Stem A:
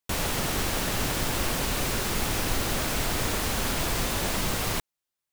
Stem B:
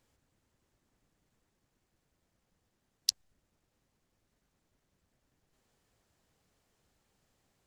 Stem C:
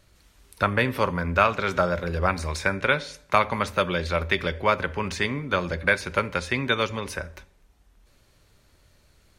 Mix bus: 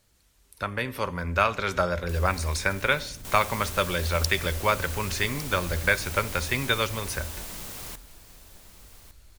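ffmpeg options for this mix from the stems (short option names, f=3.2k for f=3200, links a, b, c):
-filter_complex "[0:a]adelay=2000,volume=-16dB,asplit=2[a][b];[b]volume=-6.5dB[c];[1:a]alimiter=limit=-12dB:level=0:latency=1,volume=1dB,asplit=2[d][e];[e]volume=-8.5dB[f];[2:a]asubboost=boost=4:cutoff=89,volume=-10dB[g];[a][d]amix=inputs=2:normalize=0,acrossover=split=220[h][i];[i]acompressor=threshold=-54dB:ratio=3[j];[h][j]amix=inputs=2:normalize=0,alimiter=level_in=20.5dB:limit=-24dB:level=0:latency=1:release=20,volume=-20.5dB,volume=0dB[k];[c][f]amix=inputs=2:normalize=0,aecho=0:1:1156|2312|3468:1|0.2|0.04[l];[g][k][l]amix=inputs=3:normalize=0,highshelf=f=5.4k:g=9.5,dynaudnorm=f=440:g=5:m=8dB"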